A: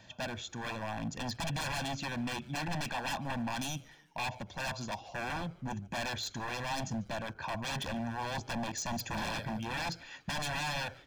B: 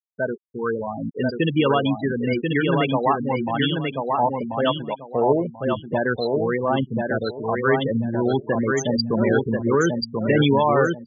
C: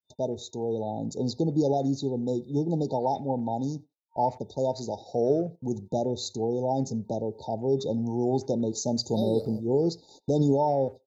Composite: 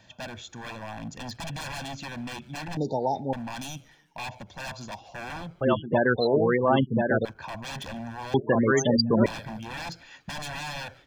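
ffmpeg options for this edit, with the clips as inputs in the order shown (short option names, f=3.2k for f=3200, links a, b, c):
-filter_complex "[1:a]asplit=2[a][b];[0:a]asplit=4[c][d][e][f];[c]atrim=end=2.772[g];[2:a]atrim=start=2.768:end=3.332[h];[d]atrim=start=3.328:end=5.612[i];[a]atrim=start=5.608:end=7.252[j];[e]atrim=start=7.248:end=8.342[k];[b]atrim=start=8.338:end=9.262[l];[f]atrim=start=9.258[m];[g][h]acrossfade=d=0.004:c1=hsin:c2=hsin[n];[n][i]acrossfade=d=0.004:c1=hsin:c2=hsin[o];[o][j]acrossfade=d=0.004:c1=hsin:c2=hsin[p];[p][k]acrossfade=d=0.004:c1=hsin:c2=hsin[q];[q][l]acrossfade=d=0.004:c1=hsin:c2=hsin[r];[r][m]acrossfade=d=0.004:c1=hsin:c2=hsin"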